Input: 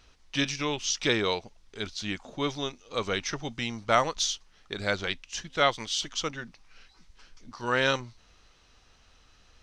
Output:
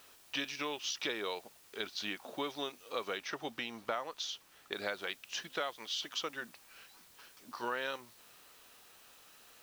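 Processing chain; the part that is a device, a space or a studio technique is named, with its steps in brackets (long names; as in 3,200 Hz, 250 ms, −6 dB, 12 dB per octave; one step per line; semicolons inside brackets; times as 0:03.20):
baby monitor (band-pass filter 350–4,300 Hz; downward compressor, threshold −35 dBFS, peak gain reduction 17 dB; white noise bed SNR 20 dB)
notch filter 2,100 Hz, Q 22
0:03.17–0:04.73: high-shelf EQ 4,900 Hz −5 dB
level +1 dB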